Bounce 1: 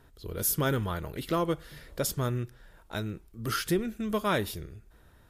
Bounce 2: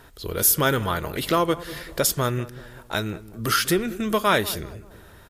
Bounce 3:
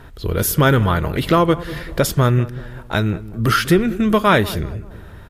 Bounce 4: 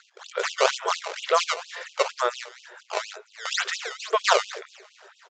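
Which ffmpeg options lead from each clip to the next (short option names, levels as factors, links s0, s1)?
-filter_complex "[0:a]lowshelf=f=410:g=-8.5,asplit=2[s0][s1];[s1]acompressor=threshold=0.0112:ratio=6,volume=0.841[s2];[s0][s2]amix=inputs=2:normalize=0,asplit=2[s3][s4];[s4]adelay=193,lowpass=f=800:p=1,volume=0.178,asplit=2[s5][s6];[s6]adelay=193,lowpass=f=800:p=1,volume=0.55,asplit=2[s7][s8];[s8]adelay=193,lowpass=f=800:p=1,volume=0.55,asplit=2[s9][s10];[s10]adelay=193,lowpass=f=800:p=1,volume=0.55,asplit=2[s11][s12];[s12]adelay=193,lowpass=f=800:p=1,volume=0.55[s13];[s3][s5][s7][s9][s11][s13]amix=inputs=6:normalize=0,volume=2.66"
-af "bass=f=250:g=7,treble=f=4000:g=-9,volume=1.88"
-af "acrusher=samples=15:mix=1:aa=0.000001:lfo=1:lforange=24:lforate=2.1,aresample=16000,aresample=44100,afftfilt=real='re*gte(b*sr/1024,350*pow(2600/350,0.5+0.5*sin(2*PI*4.3*pts/sr)))':imag='im*gte(b*sr/1024,350*pow(2600/350,0.5+0.5*sin(2*PI*4.3*pts/sr)))':win_size=1024:overlap=0.75,volume=0.708"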